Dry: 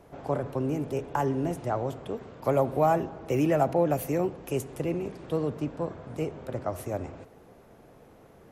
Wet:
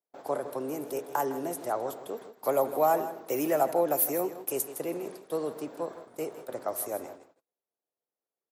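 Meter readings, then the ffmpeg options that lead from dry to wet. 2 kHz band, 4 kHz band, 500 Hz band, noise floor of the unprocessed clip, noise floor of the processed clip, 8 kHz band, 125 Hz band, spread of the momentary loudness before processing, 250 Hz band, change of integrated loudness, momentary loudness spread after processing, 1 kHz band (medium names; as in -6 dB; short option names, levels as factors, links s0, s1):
-2.0 dB, -0.5 dB, -1.5 dB, -54 dBFS, under -85 dBFS, +9.5 dB, -16.5 dB, 11 LU, -6.0 dB, -1.5 dB, 12 LU, -0.5 dB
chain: -af "highpass=380,agate=range=0.01:threshold=0.00562:ratio=16:detection=peak,equalizer=f=6200:t=o:w=1.6:g=-10.5,aexciter=amount=5.6:drive=4:freq=3900,aecho=1:1:159:0.224"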